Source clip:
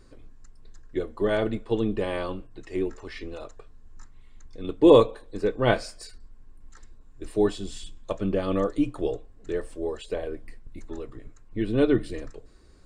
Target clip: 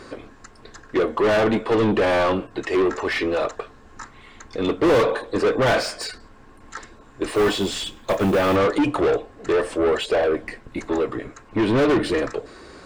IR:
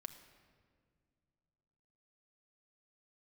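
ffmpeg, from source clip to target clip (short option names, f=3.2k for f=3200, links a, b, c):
-filter_complex "[0:a]asplit=2[a][b];[b]highpass=f=720:p=1,volume=37dB,asoftclip=type=tanh:threshold=-4dB[c];[a][c]amix=inputs=2:normalize=0,lowpass=f=1.9k:p=1,volume=-6dB,asettb=1/sr,asplit=3[d][e][f];[d]atrim=end=7.284[g];[e]atrim=start=7.28:end=8.56,asetpts=PTS-STARTPTS,afade=t=in:d=0.004:c=qsin,afade=t=out:st=1.276:d=0.004:c=qsin,acrusher=bits=6:mode=log:mix=0:aa=0.000001[h];[f]atrim=start=8.556[i];[g][h]acrossfade=d=0.004:c1=hsin:c2=qsin[j];[j][i]acrossfade=d=0.004:c1=qsin:c2=hsin,volume=-6dB"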